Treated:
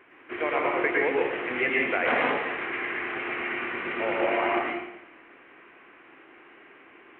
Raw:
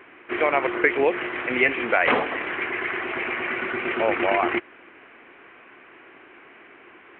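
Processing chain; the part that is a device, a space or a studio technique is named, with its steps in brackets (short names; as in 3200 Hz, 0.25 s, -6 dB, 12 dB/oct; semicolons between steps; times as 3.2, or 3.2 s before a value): bathroom (reverb RT60 0.85 s, pre-delay 0.1 s, DRR -3 dB); gain -8 dB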